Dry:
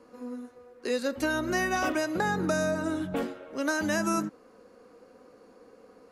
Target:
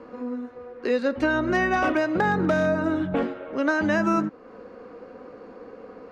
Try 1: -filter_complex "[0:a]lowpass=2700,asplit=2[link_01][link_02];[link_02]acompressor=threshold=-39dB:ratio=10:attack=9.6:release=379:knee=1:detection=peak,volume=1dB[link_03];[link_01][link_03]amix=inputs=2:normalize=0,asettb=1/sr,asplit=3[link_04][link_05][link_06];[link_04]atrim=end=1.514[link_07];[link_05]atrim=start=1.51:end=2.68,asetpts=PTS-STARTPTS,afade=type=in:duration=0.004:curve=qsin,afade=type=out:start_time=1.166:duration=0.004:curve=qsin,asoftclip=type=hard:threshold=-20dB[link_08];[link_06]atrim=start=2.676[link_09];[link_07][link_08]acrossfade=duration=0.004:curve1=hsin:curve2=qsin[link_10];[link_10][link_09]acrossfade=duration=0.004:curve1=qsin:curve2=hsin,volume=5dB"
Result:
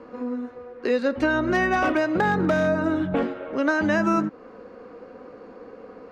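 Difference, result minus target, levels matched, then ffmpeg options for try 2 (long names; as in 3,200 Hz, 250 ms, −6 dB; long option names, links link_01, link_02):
downward compressor: peak gain reduction −7 dB
-filter_complex "[0:a]lowpass=2700,asplit=2[link_01][link_02];[link_02]acompressor=threshold=-46.5dB:ratio=10:attack=9.6:release=379:knee=1:detection=peak,volume=1dB[link_03];[link_01][link_03]amix=inputs=2:normalize=0,asettb=1/sr,asplit=3[link_04][link_05][link_06];[link_04]atrim=end=1.514[link_07];[link_05]atrim=start=1.51:end=2.68,asetpts=PTS-STARTPTS,afade=type=in:duration=0.004:curve=qsin,afade=type=out:start_time=1.166:duration=0.004:curve=qsin,asoftclip=type=hard:threshold=-20dB[link_08];[link_06]atrim=start=2.676[link_09];[link_07][link_08]acrossfade=duration=0.004:curve1=hsin:curve2=qsin[link_10];[link_10][link_09]acrossfade=duration=0.004:curve1=qsin:curve2=hsin,volume=5dB"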